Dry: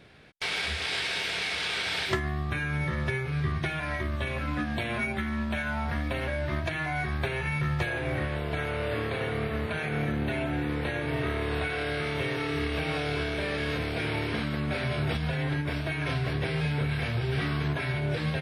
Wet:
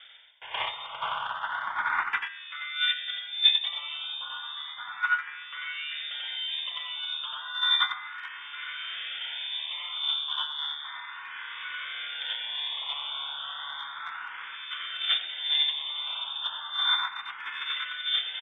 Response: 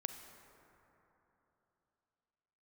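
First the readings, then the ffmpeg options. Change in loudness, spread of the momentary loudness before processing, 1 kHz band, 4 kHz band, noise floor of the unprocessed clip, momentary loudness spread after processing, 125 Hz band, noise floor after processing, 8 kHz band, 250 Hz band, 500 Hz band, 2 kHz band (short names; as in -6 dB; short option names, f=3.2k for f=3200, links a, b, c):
+0.5 dB, 3 LU, +1.0 dB, +9.5 dB, -33 dBFS, 13 LU, under -40 dB, -42 dBFS, under -25 dB, under -35 dB, under -20 dB, -1.5 dB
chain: -filter_complex "[0:a]lowpass=f=3.1k:t=q:w=0.5098,lowpass=f=3.1k:t=q:w=0.6013,lowpass=f=3.1k:t=q:w=0.9,lowpass=f=3.1k:t=q:w=2.563,afreqshift=-3700,firequalizer=gain_entry='entry(110,0);entry(310,-6);entry(940,12);entry(2000,1)':delay=0.05:min_phase=1,aecho=1:1:90.38|128.3:0.891|0.316,agate=range=-15dB:threshold=-21dB:ratio=16:detection=peak,areverse,acompressor=mode=upward:threshold=-35dB:ratio=2.5,areverse,equalizer=f=2.8k:w=0.64:g=7.5,asplit=2[a][b];[b]afreqshift=0.33[c];[a][c]amix=inputs=2:normalize=1"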